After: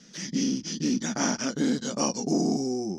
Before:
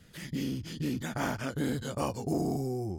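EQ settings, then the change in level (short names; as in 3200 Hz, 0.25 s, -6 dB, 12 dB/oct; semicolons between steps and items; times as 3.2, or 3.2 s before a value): synth low-pass 5800 Hz, resonance Q 12; resonant low shelf 140 Hz -13.5 dB, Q 3; +2.0 dB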